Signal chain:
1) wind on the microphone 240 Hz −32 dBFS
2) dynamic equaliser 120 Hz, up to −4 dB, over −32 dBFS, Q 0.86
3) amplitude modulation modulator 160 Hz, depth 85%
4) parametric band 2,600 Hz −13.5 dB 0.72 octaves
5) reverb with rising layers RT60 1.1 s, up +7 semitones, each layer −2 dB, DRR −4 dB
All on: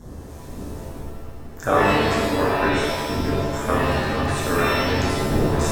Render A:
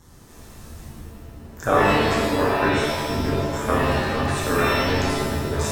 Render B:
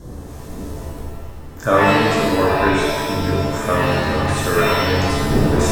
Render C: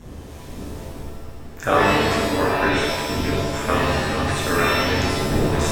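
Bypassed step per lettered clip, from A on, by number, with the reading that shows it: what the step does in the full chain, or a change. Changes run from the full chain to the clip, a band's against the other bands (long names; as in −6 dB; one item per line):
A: 1, change in momentary loudness spread +3 LU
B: 3, change in integrated loudness +4.0 LU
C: 4, 4 kHz band +3.0 dB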